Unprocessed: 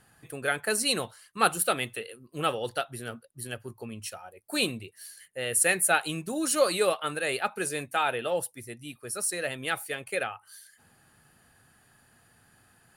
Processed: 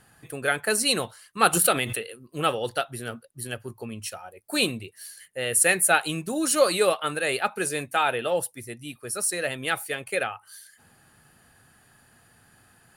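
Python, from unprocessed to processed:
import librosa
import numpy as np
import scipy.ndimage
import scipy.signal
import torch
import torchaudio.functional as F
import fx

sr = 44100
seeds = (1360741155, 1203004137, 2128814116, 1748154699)

y = fx.pre_swell(x, sr, db_per_s=26.0, at=(1.53, 2.09))
y = F.gain(torch.from_numpy(y), 3.5).numpy()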